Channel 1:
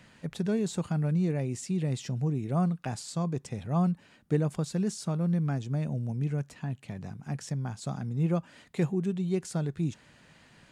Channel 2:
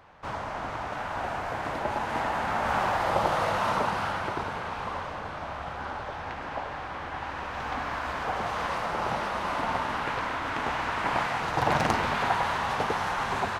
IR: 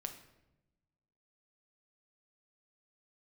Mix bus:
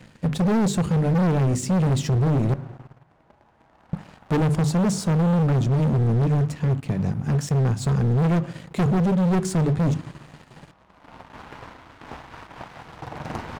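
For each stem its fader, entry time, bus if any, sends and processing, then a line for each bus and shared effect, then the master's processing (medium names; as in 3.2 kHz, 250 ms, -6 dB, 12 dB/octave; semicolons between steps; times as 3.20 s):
-1.0 dB, 0.00 s, muted 2.54–3.93 s, send -8 dB, hum notches 50/100/150/200/250 Hz
-18.5 dB, 1.45 s, send -6.5 dB, random flutter of the level, depth 60%; auto duck -22 dB, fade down 1.90 s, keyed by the first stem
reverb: on, RT60 0.95 s, pre-delay 6 ms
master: bass shelf 440 Hz +10 dB; waveshaping leveller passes 2; overload inside the chain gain 18 dB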